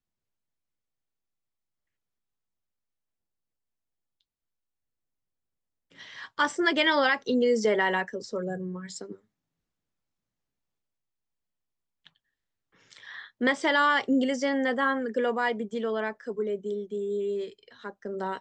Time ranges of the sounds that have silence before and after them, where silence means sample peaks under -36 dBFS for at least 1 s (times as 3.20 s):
6.01–9.13 s